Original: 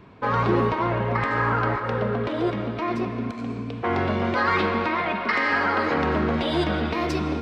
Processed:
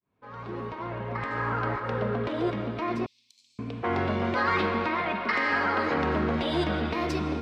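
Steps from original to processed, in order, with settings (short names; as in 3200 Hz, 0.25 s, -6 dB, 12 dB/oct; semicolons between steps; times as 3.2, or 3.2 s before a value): opening faded in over 2.09 s; 3.06–3.59 inverse Chebyshev high-pass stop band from 1600 Hz, stop band 50 dB; gain -3.5 dB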